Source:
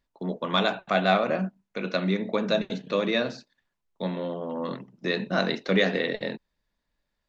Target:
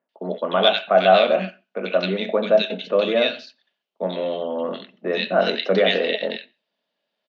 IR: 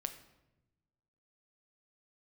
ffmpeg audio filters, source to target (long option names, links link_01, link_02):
-filter_complex "[0:a]highpass=frequency=230:width=0.5412,highpass=frequency=230:width=1.3066,equalizer=frequency=300:width_type=q:width=4:gain=-8,equalizer=frequency=640:width_type=q:width=4:gain=6,equalizer=frequency=1000:width_type=q:width=4:gain=-5,equalizer=frequency=1900:width_type=q:width=4:gain=-3,equalizer=frequency=3000:width_type=q:width=4:gain=9,lowpass=frequency=5200:width=0.5412,lowpass=frequency=5200:width=1.3066,acrossover=split=1700[link_01][link_02];[link_02]adelay=90[link_03];[link_01][link_03]amix=inputs=2:normalize=0,asplit=2[link_04][link_05];[1:a]atrim=start_sample=2205,afade=type=out:start_time=0.21:duration=0.01,atrim=end_sample=9702,lowpass=4600[link_06];[link_05][link_06]afir=irnorm=-1:irlink=0,volume=-9dB[link_07];[link_04][link_07]amix=inputs=2:normalize=0,volume=4dB"